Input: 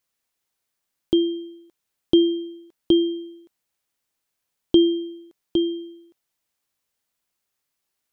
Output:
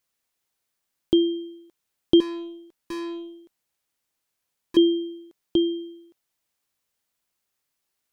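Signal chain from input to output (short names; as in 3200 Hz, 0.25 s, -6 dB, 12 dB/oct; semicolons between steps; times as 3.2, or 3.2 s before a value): 2.2–4.77 tube stage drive 30 dB, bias 0.2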